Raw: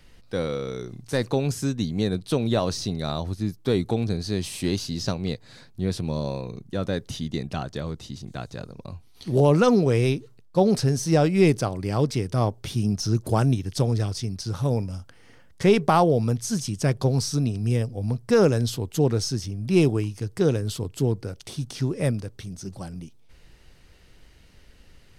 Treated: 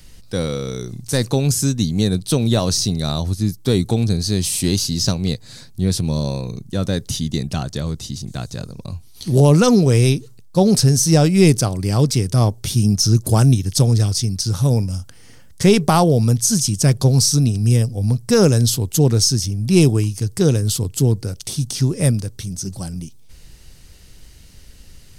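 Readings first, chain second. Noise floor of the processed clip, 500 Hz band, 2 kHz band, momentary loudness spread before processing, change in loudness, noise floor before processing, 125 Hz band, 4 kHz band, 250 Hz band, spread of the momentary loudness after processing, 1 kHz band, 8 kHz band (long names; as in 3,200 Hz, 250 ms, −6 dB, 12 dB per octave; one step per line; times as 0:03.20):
−42 dBFS, +3.0 dB, +4.0 dB, 16 LU, +7.0 dB, −51 dBFS, +9.0 dB, +10.5 dB, +6.5 dB, 14 LU, +2.5 dB, +14.5 dB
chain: bass and treble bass +7 dB, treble +14 dB
level +2.5 dB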